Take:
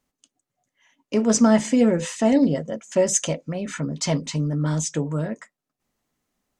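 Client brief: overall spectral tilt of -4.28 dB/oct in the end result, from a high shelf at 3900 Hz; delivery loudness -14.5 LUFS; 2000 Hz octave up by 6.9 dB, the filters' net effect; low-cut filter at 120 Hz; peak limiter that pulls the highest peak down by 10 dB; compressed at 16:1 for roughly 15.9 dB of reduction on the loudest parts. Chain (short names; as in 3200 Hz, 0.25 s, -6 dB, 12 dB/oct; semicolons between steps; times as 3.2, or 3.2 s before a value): HPF 120 Hz; bell 2000 Hz +6.5 dB; high shelf 3900 Hz +7.5 dB; compressor 16:1, threshold -27 dBFS; gain +19 dB; limiter -5 dBFS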